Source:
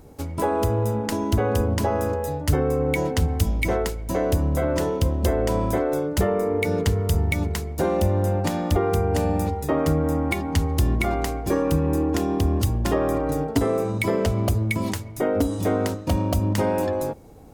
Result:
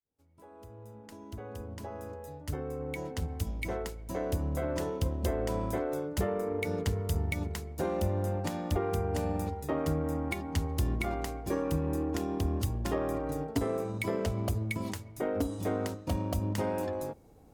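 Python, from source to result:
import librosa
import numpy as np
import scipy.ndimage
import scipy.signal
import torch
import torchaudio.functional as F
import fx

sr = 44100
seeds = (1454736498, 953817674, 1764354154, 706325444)

y = fx.fade_in_head(x, sr, length_s=4.72)
y = fx.cheby_harmonics(y, sr, harmonics=(7,), levels_db=(-31,), full_scale_db=-8.5)
y = F.gain(torch.from_numpy(y), -9.0).numpy()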